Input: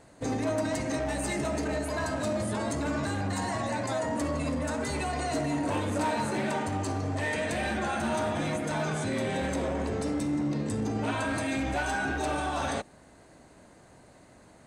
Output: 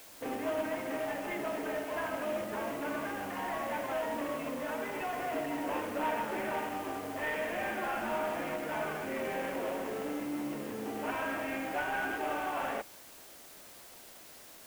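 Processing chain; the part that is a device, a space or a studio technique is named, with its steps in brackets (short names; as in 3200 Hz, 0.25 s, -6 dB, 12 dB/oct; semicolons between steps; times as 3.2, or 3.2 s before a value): army field radio (BPF 330–2900 Hz; CVSD 16 kbps; white noise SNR 17 dB); gain -2.5 dB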